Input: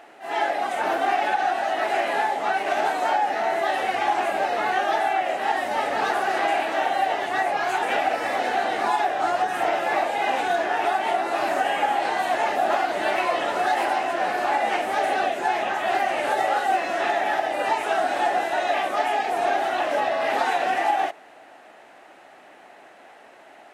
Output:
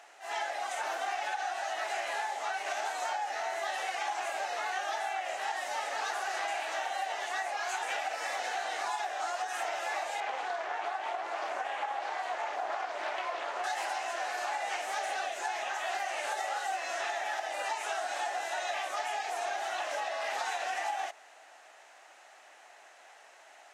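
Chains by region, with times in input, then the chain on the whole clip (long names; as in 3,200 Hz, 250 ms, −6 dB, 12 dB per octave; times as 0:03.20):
0:10.20–0:13.64: low-pass filter 1,700 Hz 6 dB per octave + highs frequency-modulated by the lows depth 0.27 ms
whole clip: high-pass filter 700 Hz 12 dB per octave; downward compressor 2.5 to 1, threshold −27 dBFS; parametric band 6,500 Hz +11.5 dB 1 octave; level −6 dB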